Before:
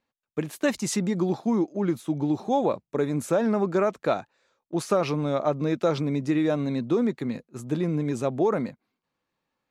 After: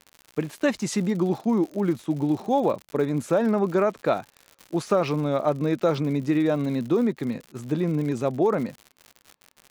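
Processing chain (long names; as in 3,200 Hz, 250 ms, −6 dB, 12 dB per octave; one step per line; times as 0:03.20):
high-shelf EQ 7,100 Hz −9 dB
surface crackle 110 per second −35 dBFS
level +1.5 dB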